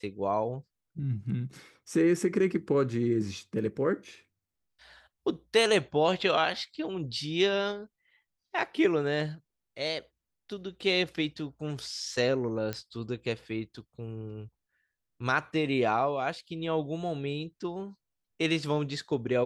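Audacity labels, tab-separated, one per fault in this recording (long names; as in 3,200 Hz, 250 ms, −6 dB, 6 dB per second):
12.730000	12.730000	click −19 dBFS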